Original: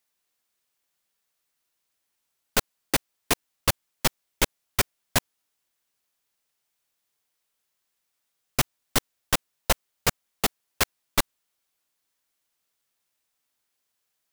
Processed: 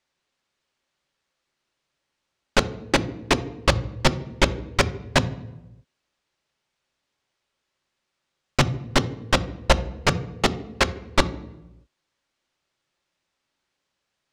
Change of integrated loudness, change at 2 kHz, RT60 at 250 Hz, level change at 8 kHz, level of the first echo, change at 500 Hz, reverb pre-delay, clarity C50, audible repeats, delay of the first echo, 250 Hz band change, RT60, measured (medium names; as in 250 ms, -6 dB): +3.5 dB, +5.0 dB, 1.1 s, -4.0 dB, no echo, +8.0 dB, 3 ms, 15.5 dB, no echo, no echo, +8.5 dB, 0.95 s